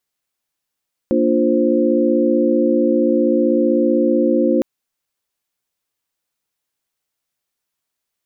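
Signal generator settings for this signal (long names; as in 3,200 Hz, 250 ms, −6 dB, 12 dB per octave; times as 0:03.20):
held notes A#3/D4/F4/C5 sine, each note −18 dBFS 3.51 s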